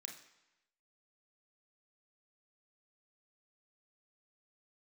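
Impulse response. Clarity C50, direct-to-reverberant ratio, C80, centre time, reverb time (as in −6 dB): 7.0 dB, 1.0 dB, 10.5 dB, 27 ms, 0.95 s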